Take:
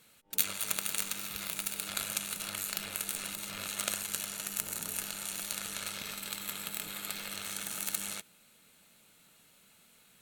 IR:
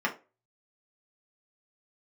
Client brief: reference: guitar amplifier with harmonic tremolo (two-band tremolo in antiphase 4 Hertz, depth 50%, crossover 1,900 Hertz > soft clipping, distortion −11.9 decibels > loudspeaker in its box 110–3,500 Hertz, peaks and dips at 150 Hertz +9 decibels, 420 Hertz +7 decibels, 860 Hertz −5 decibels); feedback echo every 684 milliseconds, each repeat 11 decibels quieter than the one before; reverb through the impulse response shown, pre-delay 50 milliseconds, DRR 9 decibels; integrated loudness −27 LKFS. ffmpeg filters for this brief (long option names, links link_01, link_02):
-filter_complex "[0:a]aecho=1:1:684|1368|2052:0.282|0.0789|0.0221,asplit=2[link_01][link_02];[1:a]atrim=start_sample=2205,adelay=50[link_03];[link_02][link_03]afir=irnorm=-1:irlink=0,volume=-19.5dB[link_04];[link_01][link_04]amix=inputs=2:normalize=0,acrossover=split=1900[link_05][link_06];[link_05]aeval=exprs='val(0)*(1-0.5/2+0.5/2*cos(2*PI*4*n/s))':channel_layout=same[link_07];[link_06]aeval=exprs='val(0)*(1-0.5/2-0.5/2*cos(2*PI*4*n/s))':channel_layout=same[link_08];[link_07][link_08]amix=inputs=2:normalize=0,asoftclip=threshold=-18.5dB,highpass=110,equalizer=frequency=150:width_type=q:width=4:gain=9,equalizer=frequency=420:width_type=q:width=4:gain=7,equalizer=frequency=860:width_type=q:width=4:gain=-5,lowpass=frequency=3500:width=0.5412,lowpass=frequency=3500:width=1.3066,volume=17dB"